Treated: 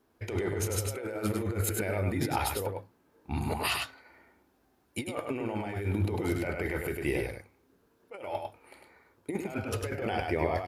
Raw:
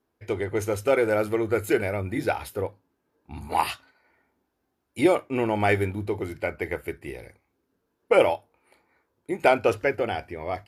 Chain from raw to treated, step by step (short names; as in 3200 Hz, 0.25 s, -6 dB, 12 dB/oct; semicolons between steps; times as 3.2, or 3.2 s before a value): negative-ratio compressor -33 dBFS, ratio -1; on a send: echo 0.101 s -4 dB; on the sum: gain -1 dB